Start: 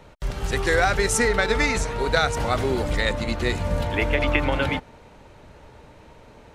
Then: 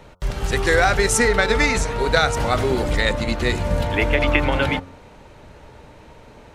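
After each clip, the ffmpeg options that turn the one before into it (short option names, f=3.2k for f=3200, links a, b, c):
-af "bandreject=f=90.56:t=h:w=4,bandreject=f=181.12:t=h:w=4,bandreject=f=271.68:t=h:w=4,bandreject=f=362.24:t=h:w=4,bandreject=f=452.8:t=h:w=4,bandreject=f=543.36:t=h:w=4,bandreject=f=633.92:t=h:w=4,bandreject=f=724.48:t=h:w=4,bandreject=f=815.04:t=h:w=4,bandreject=f=905.6:t=h:w=4,bandreject=f=996.16:t=h:w=4,bandreject=f=1.08672k:t=h:w=4,bandreject=f=1.17728k:t=h:w=4,bandreject=f=1.26784k:t=h:w=4,bandreject=f=1.3584k:t=h:w=4,bandreject=f=1.44896k:t=h:w=4,volume=3.5dB"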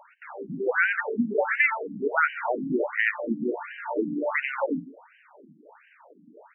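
-af "aecho=1:1:92:0.178,afftfilt=real='re*between(b*sr/1024,220*pow(2200/220,0.5+0.5*sin(2*PI*1.4*pts/sr))/1.41,220*pow(2200/220,0.5+0.5*sin(2*PI*1.4*pts/sr))*1.41)':imag='im*between(b*sr/1024,220*pow(2200/220,0.5+0.5*sin(2*PI*1.4*pts/sr))/1.41,220*pow(2200/220,0.5+0.5*sin(2*PI*1.4*pts/sr))*1.41)':win_size=1024:overlap=0.75"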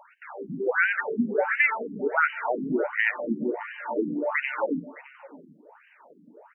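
-af "aecho=1:1:613:0.1"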